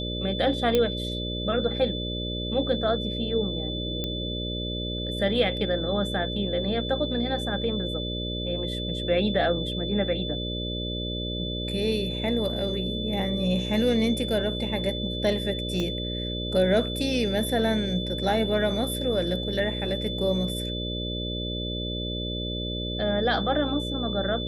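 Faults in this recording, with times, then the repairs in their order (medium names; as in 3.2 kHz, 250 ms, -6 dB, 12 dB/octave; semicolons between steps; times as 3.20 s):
buzz 60 Hz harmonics 10 -32 dBFS
whine 3.5 kHz -33 dBFS
0.75 s: pop -10 dBFS
4.04 s: pop -16 dBFS
15.80 s: pop -17 dBFS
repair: de-click; band-stop 3.5 kHz, Q 30; de-hum 60 Hz, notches 10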